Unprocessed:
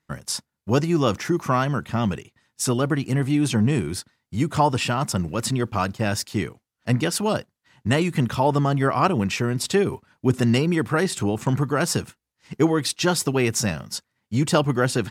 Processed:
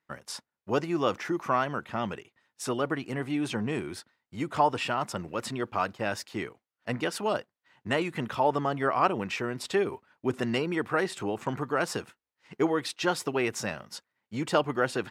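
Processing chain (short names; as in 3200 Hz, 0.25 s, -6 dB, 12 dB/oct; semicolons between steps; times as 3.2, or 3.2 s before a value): tone controls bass -13 dB, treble -10 dB; gain -3.5 dB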